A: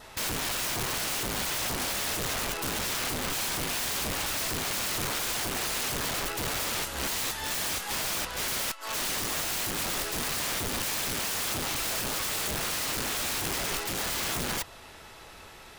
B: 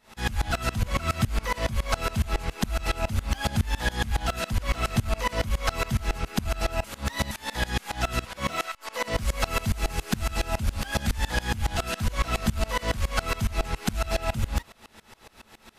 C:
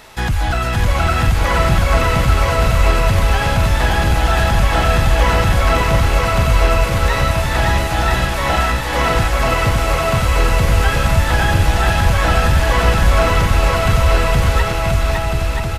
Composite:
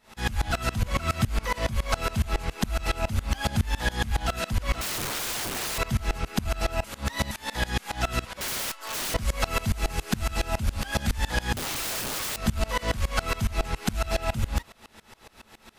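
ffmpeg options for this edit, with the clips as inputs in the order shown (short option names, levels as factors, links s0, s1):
-filter_complex "[0:a]asplit=3[s0][s1][s2];[1:a]asplit=4[s3][s4][s5][s6];[s3]atrim=end=4.812[s7];[s0]atrim=start=4.808:end=5.782[s8];[s4]atrim=start=5.778:end=8.412[s9];[s1]atrim=start=8.408:end=9.142[s10];[s5]atrim=start=9.138:end=11.572[s11];[s2]atrim=start=11.568:end=12.362[s12];[s6]atrim=start=12.358[s13];[s7][s8]acrossfade=d=0.004:c1=hsin:c2=hsin[s14];[s14][s9]acrossfade=d=0.004:c1=hsin:c2=hsin[s15];[s15][s10]acrossfade=d=0.004:c1=hsin:c2=hsin[s16];[s16][s11]acrossfade=d=0.004:c1=hsin:c2=hsin[s17];[s17][s12]acrossfade=d=0.004:c1=hsin:c2=hsin[s18];[s18][s13]acrossfade=d=0.004:c1=hsin:c2=hsin"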